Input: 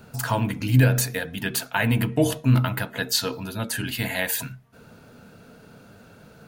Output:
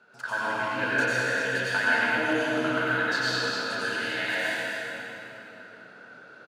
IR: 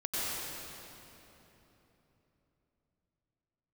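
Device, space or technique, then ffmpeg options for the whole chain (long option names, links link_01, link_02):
station announcement: -filter_complex "[0:a]highpass=400,lowpass=4600,equalizer=frequency=1500:width_type=o:width=0.3:gain=11,aecho=1:1:195.3|259.5:0.355|0.251[link_01];[1:a]atrim=start_sample=2205[link_02];[link_01][link_02]afir=irnorm=-1:irlink=0,volume=-8dB"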